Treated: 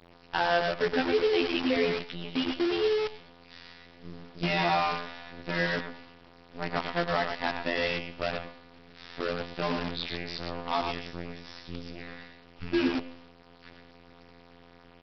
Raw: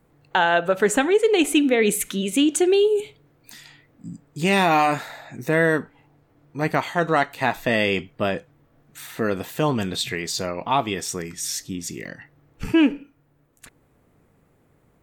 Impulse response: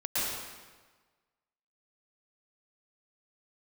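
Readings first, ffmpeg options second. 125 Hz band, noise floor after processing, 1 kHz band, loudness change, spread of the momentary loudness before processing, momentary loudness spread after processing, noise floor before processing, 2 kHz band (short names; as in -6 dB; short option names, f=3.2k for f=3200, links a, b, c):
-9.0 dB, -55 dBFS, -8.0 dB, -8.0 dB, 17 LU, 20 LU, -62 dBFS, -7.5 dB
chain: -af "aeval=exprs='val(0)+0.5*0.0224*sgn(val(0))':c=same,agate=range=-33dB:threshold=-35dB:ratio=3:detection=peak,afftfilt=real='hypot(re,im)*cos(PI*b)':imag='0':win_size=2048:overlap=0.75,aecho=1:1:112|224|336:0.531|0.101|0.0192,aresample=11025,acrusher=bits=5:dc=4:mix=0:aa=0.000001,aresample=44100,volume=-6.5dB"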